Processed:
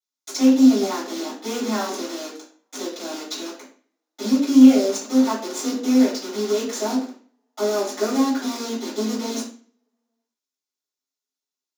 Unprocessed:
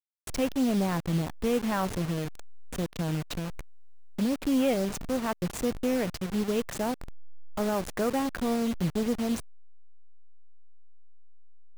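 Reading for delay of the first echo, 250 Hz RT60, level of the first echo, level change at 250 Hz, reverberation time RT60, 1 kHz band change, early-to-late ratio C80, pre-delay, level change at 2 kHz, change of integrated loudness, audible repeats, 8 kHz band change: no echo, 0.55 s, no echo, +10.5 dB, 0.45 s, +4.5 dB, 10.0 dB, 3 ms, +3.0 dB, +9.0 dB, no echo, +10.0 dB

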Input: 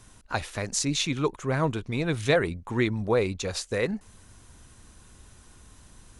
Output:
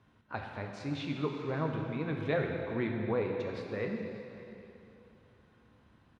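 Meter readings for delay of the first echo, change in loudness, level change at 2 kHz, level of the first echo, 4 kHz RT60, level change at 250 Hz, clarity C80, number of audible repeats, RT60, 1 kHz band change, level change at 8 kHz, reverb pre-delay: 586 ms, -8.0 dB, -9.0 dB, -18.0 dB, 2.7 s, -6.0 dB, 3.5 dB, 1, 2.9 s, -7.5 dB, under -30 dB, 5 ms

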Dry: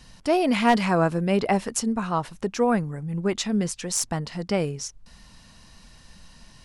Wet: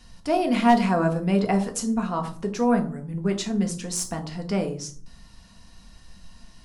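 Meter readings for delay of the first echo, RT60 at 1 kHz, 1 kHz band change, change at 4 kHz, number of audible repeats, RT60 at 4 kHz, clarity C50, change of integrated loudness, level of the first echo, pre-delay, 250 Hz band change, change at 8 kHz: no echo, 0.40 s, +0.5 dB, -3.0 dB, no echo, 0.25 s, 12.5 dB, 0.0 dB, no echo, 3 ms, +1.5 dB, -2.5 dB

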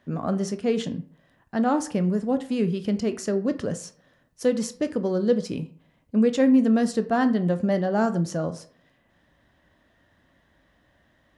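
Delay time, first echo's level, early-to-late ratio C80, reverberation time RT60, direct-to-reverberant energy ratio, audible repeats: no echo, no echo, 18.5 dB, 0.55 s, 9.0 dB, no echo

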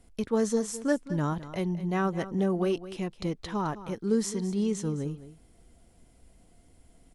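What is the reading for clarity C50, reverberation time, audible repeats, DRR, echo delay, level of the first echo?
no reverb, no reverb, 1, no reverb, 211 ms, -14.5 dB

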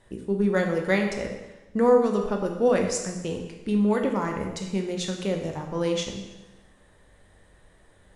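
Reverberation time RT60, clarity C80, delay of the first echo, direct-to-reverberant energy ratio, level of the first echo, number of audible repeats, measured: 1.1 s, 7.0 dB, no echo, 2.5 dB, no echo, no echo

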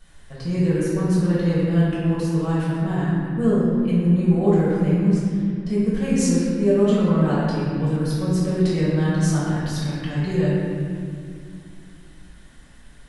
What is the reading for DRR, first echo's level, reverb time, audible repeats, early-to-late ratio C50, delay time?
-10.5 dB, no echo, 2.3 s, no echo, -3.5 dB, no echo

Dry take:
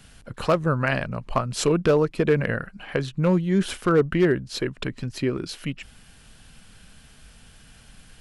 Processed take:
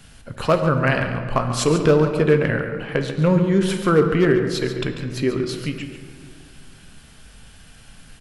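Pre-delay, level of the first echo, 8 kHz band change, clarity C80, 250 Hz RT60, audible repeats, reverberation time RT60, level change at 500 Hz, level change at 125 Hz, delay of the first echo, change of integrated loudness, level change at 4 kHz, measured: 7 ms, -10.5 dB, +3.5 dB, 6.5 dB, 2.5 s, 1, 2.2 s, +4.0 dB, +4.5 dB, 141 ms, +4.0 dB, +3.5 dB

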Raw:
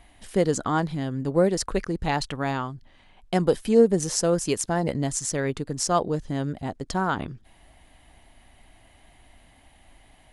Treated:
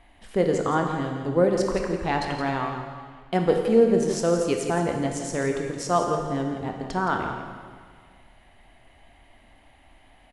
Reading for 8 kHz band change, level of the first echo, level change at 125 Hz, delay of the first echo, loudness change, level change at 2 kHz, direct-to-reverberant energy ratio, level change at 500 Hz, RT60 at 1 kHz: -7.0 dB, -9.5 dB, -1.5 dB, 169 ms, +0.5 dB, +1.5 dB, 2.0 dB, +1.5 dB, 1.7 s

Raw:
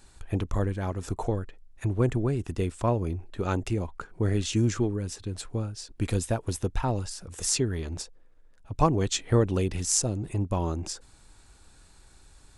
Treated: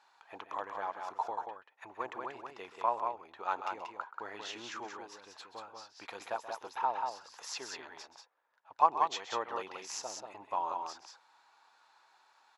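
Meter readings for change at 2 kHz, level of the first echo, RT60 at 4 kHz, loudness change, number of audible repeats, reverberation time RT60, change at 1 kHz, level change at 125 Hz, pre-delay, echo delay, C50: -3.5 dB, -14.0 dB, no reverb, -8.5 dB, 2, no reverb, +2.5 dB, under -35 dB, no reverb, 129 ms, no reverb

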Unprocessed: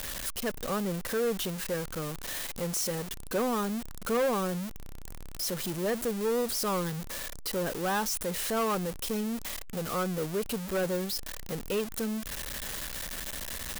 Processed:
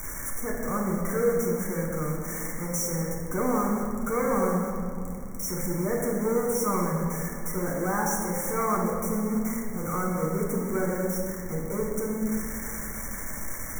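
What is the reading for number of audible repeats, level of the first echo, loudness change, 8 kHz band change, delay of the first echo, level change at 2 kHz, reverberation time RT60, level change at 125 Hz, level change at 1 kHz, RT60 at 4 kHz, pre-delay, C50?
no echo, no echo, +3.5 dB, +2.0 dB, no echo, +1.5 dB, 2.5 s, +6.5 dB, +4.0 dB, 1.6 s, 6 ms, 1.5 dB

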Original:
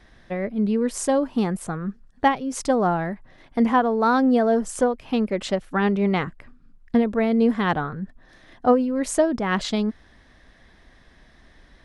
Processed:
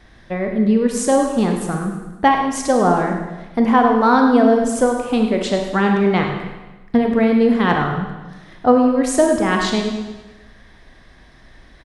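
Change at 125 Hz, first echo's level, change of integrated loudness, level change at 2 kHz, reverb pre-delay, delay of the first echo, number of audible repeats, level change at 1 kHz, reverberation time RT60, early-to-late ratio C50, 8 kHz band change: +5.5 dB, -11.0 dB, +5.5 dB, +6.0 dB, 29 ms, 103 ms, 4, +6.5 dB, 1.1 s, 4.0 dB, +6.0 dB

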